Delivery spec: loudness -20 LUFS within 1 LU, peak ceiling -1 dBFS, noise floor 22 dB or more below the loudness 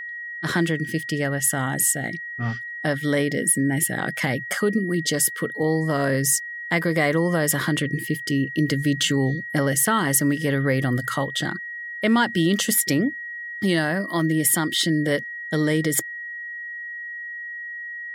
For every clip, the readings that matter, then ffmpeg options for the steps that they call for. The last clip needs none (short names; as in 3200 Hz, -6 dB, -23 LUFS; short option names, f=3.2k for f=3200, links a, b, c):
steady tone 1900 Hz; tone level -31 dBFS; loudness -22.5 LUFS; peak -7.5 dBFS; loudness target -20.0 LUFS
-> -af "bandreject=f=1.9k:w=30"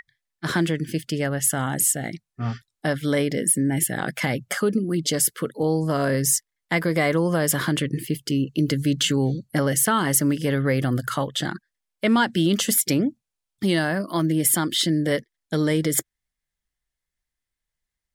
steady tone none; loudness -22.5 LUFS; peak -7.5 dBFS; loudness target -20.0 LUFS
-> -af "volume=2.5dB"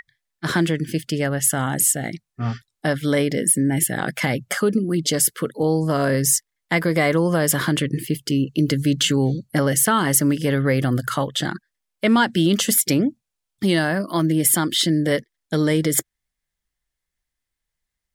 loudness -20.0 LUFS; peak -5.0 dBFS; noise floor -82 dBFS